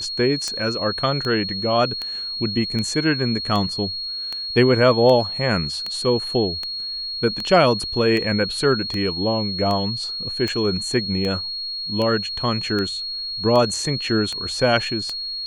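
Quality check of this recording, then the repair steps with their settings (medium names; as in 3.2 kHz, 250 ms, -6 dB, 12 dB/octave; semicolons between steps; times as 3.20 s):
tick 78 rpm -13 dBFS
whine 4.3 kHz -26 dBFS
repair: de-click; band-stop 4.3 kHz, Q 30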